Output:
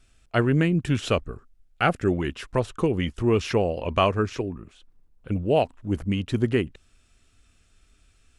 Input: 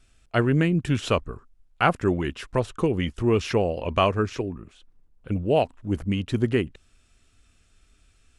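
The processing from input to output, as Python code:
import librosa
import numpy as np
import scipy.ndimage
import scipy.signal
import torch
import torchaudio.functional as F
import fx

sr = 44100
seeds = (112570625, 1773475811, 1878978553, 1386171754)

y = fx.peak_eq(x, sr, hz=1000.0, db=fx.line((1.04, -6.5), (2.11, -14.0)), octaves=0.28, at=(1.04, 2.11), fade=0.02)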